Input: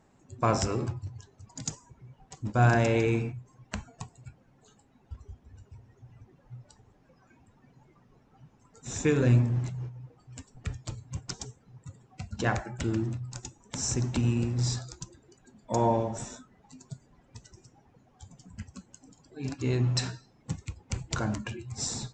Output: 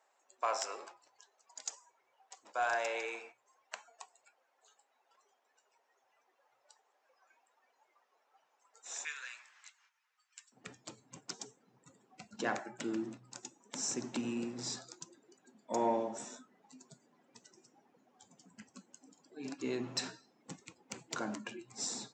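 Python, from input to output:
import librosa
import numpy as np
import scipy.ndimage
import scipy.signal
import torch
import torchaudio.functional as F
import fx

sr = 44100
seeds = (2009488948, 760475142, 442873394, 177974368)

y = fx.highpass(x, sr, hz=fx.steps((0.0, 580.0), (9.05, 1400.0), (10.52, 220.0)), slope=24)
y = 10.0 ** (-15.0 / 20.0) * np.tanh(y / 10.0 ** (-15.0 / 20.0))
y = y * 10.0 ** (-5.0 / 20.0)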